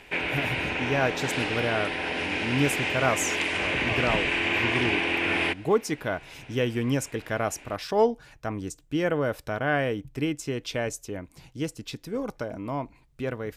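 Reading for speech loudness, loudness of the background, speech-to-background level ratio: −30.0 LKFS, −26.5 LKFS, −3.5 dB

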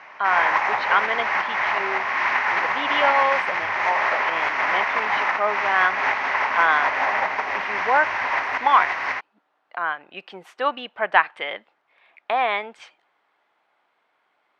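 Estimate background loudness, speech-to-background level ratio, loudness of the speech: −22.0 LKFS, −2.0 dB, −24.0 LKFS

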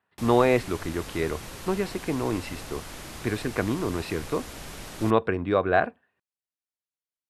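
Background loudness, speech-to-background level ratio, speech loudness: −40.0 LKFS, 13.0 dB, −27.0 LKFS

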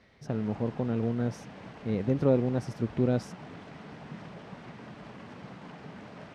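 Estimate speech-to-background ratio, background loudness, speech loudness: 16.0 dB, −46.0 LKFS, −30.0 LKFS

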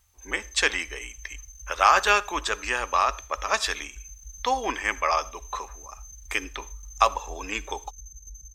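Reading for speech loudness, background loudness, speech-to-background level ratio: −25.5 LKFS, −43.5 LKFS, 18.0 dB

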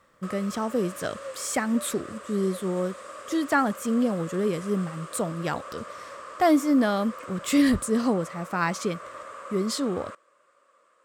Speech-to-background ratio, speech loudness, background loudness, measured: 14.5 dB, −26.5 LKFS, −41.0 LKFS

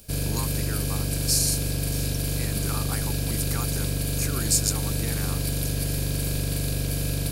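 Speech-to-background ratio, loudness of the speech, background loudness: −2.5 dB, −29.5 LKFS, −27.0 LKFS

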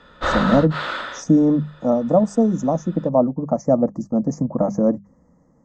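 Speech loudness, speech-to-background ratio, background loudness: −20.0 LKFS, 5.0 dB, −25.0 LKFS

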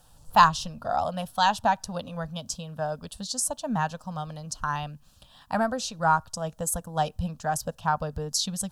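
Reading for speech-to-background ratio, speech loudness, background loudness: 18.0 dB, −27.5 LKFS, −45.5 LKFS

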